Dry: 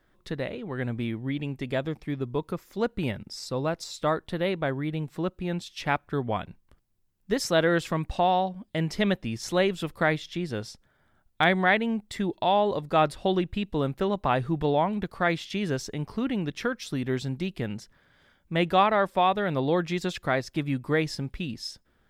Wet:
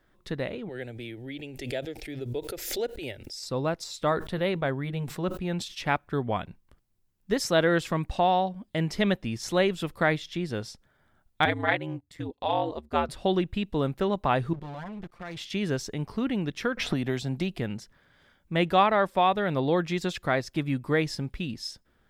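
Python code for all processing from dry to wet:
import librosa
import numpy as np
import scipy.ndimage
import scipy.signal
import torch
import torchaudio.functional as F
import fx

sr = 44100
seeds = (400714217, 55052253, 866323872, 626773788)

y = fx.chain(x, sr, fx.low_shelf(hz=440.0, db=-6.0),
    fx.fixed_phaser(hz=450.0, stages=4),
    fx.pre_swell(db_per_s=56.0), at=(0.69, 3.43))
y = fx.chain(y, sr, fx.notch(hz=310.0, q=8.0),
    fx.sustainer(db_per_s=110.0), at=(4.11, 5.8))
y = fx.chain(y, sr, fx.ring_mod(carrier_hz=80.0),
    fx.upward_expand(threshold_db=-46.0, expansion=1.5), at=(11.45, 13.09))
y = fx.chain(y, sr, fx.lower_of_two(delay_ms=5.7),
    fx.high_shelf(hz=5400.0, db=-5.0),
    fx.level_steps(step_db=19), at=(14.53, 15.37))
y = fx.chain(y, sr, fx.peak_eq(hz=700.0, db=7.5, octaves=0.39),
    fx.band_squash(depth_pct=100), at=(16.77, 17.59))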